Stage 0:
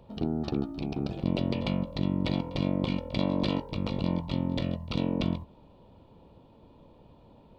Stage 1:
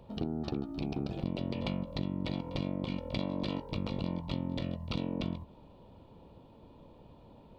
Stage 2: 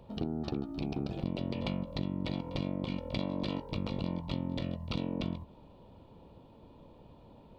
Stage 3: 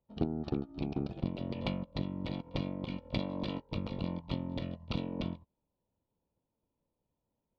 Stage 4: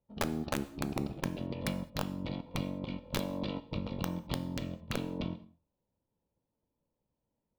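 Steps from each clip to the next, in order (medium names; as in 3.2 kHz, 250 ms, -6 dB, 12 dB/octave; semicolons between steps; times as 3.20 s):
compression, threshold -30 dBFS, peak gain reduction 8.5 dB
no audible change
distance through air 79 m; upward expansion 2.5:1, over -54 dBFS; trim +5.5 dB
integer overflow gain 22.5 dB; gated-style reverb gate 240 ms falling, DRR 11.5 dB; tape noise reduction on one side only decoder only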